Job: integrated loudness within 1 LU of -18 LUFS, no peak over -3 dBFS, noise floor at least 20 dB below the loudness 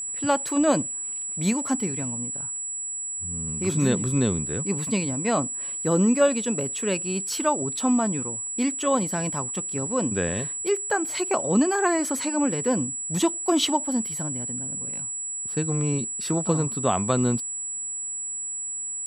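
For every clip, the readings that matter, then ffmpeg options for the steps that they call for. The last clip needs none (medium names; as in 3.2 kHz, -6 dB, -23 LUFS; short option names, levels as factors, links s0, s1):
steady tone 7.8 kHz; tone level -29 dBFS; loudness -25.0 LUFS; peak level -8.0 dBFS; loudness target -18.0 LUFS
-> -af "bandreject=f=7800:w=30"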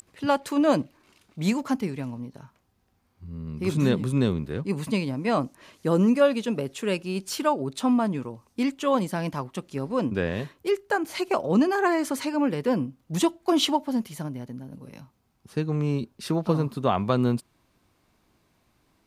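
steady tone not found; loudness -26.0 LUFS; peak level -8.0 dBFS; loudness target -18.0 LUFS
-> -af "volume=2.51,alimiter=limit=0.708:level=0:latency=1"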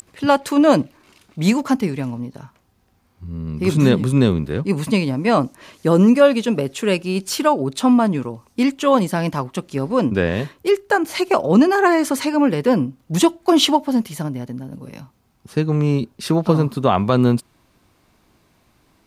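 loudness -18.0 LUFS; peak level -3.0 dBFS; noise floor -61 dBFS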